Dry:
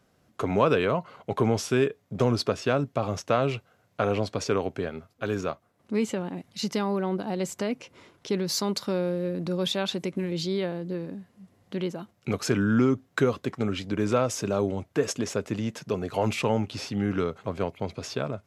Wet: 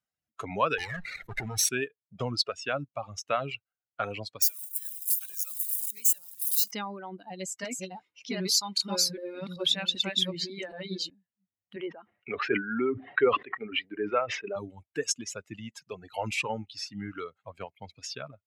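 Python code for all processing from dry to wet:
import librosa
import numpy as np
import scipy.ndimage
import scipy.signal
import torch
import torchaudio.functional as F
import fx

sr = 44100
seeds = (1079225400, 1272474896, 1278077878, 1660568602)

y = fx.chain(x, sr, fx.lower_of_two(delay_ms=0.51),
    fx.overload_stage(gain_db=22.5),
    fx.env_flatten(amount_pct=70), at=(0.78, 1.69))
y = fx.chain(y, sr, fx.crossing_spikes(level_db=-22.5),
    fx.pre_emphasis(coefficient=0.9),
    fx.band_squash(depth_pct=40), at=(4.42, 6.71))
y = fx.chain(y, sr, fx.reverse_delay(ms=387, wet_db=-0.5),
    fx.doubler(ms=16.0, db=-11), at=(7.24, 11.1))
y = fx.chain(y, sr, fx.cabinet(low_hz=170.0, low_slope=12, high_hz=2900.0, hz=(170.0, 410.0, 1900.0), db=(-5, 8, 4)),
    fx.sustainer(db_per_s=78.0), at=(11.76, 14.56))
y = fx.bin_expand(y, sr, power=1.5)
y = fx.dereverb_blind(y, sr, rt60_s=2.0)
y = fx.tilt_shelf(y, sr, db=-7.0, hz=970.0)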